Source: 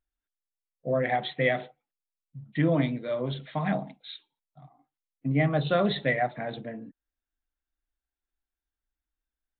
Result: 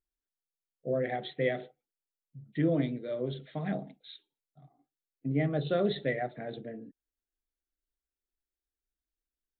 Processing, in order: fifteen-band graphic EQ 400 Hz +8 dB, 1 kHz -11 dB, 2.5 kHz -4 dB; trim -5.5 dB

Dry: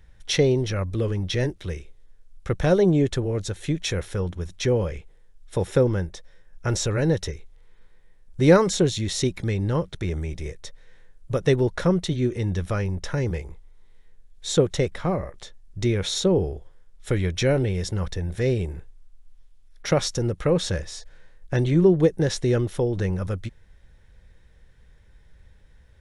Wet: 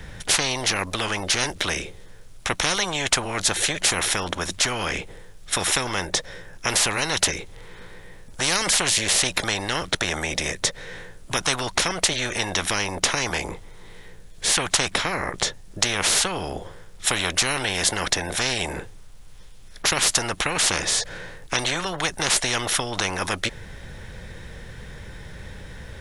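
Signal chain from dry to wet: spectrum-flattening compressor 10:1; trim +2 dB

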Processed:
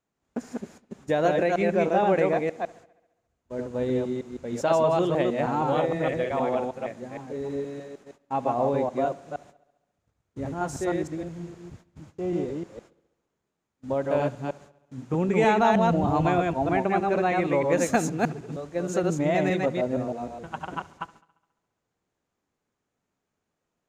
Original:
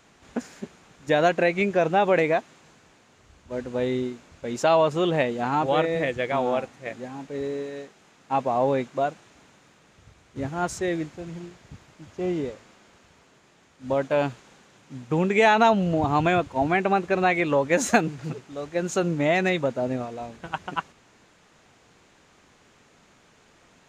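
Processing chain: chunks repeated in reverse 156 ms, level -2 dB; gate -45 dBFS, range -22 dB; peaking EQ 2.9 kHz -7 dB 2.4 oct; bucket-brigade echo 69 ms, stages 2048, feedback 63%, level -21.5 dB; trim -2 dB

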